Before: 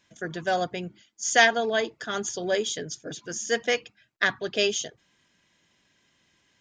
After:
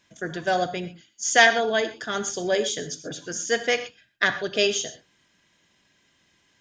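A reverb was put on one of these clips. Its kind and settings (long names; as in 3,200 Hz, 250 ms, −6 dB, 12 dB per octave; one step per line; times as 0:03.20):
reverb whose tail is shaped and stops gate 150 ms flat, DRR 10 dB
level +2 dB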